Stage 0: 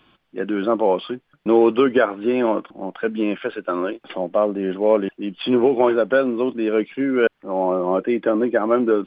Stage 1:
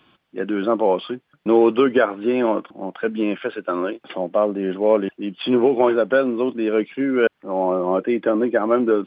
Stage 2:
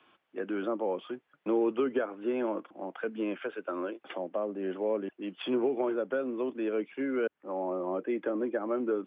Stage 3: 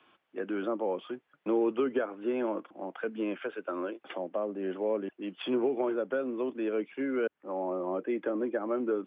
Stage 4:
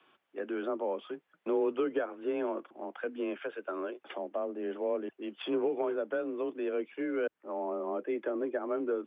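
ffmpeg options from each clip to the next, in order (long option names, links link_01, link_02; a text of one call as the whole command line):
ffmpeg -i in.wav -af "highpass=69" out.wav
ffmpeg -i in.wav -filter_complex "[0:a]acrossover=split=310 3400:gain=0.2 1 0.0891[link_01][link_02][link_03];[link_01][link_02][link_03]amix=inputs=3:normalize=0,acrossover=split=330[link_04][link_05];[link_05]acompressor=threshold=-33dB:ratio=2.5[link_06];[link_04][link_06]amix=inputs=2:normalize=0,volume=-4.5dB" out.wav
ffmpeg -i in.wav -af anull out.wav
ffmpeg -i in.wav -af "afreqshift=26,volume=-2dB" out.wav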